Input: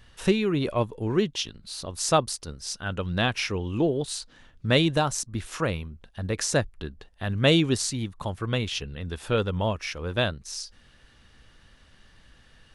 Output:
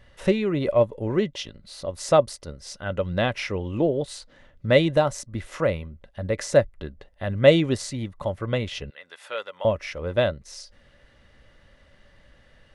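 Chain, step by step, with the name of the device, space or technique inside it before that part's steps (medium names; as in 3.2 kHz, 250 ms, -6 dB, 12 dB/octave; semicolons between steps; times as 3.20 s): inside a helmet (treble shelf 3.4 kHz -8 dB; small resonant body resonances 570/2000 Hz, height 13 dB, ringing for 45 ms); 8.90–9.65 s: high-pass 1.1 kHz 12 dB/octave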